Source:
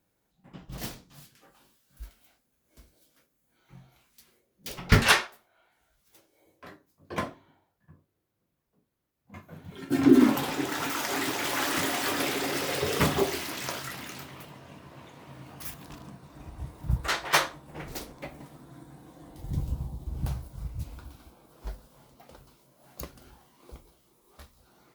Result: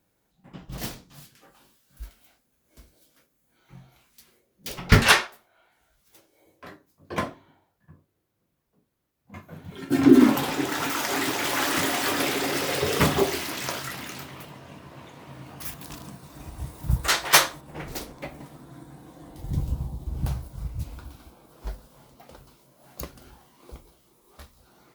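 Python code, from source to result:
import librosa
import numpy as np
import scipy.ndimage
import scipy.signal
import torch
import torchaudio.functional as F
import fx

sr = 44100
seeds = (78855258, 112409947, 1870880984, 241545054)

y = fx.high_shelf(x, sr, hz=4600.0, db=10.5, at=(15.81, 17.61))
y = F.gain(torch.from_numpy(y), 3.5).numpy()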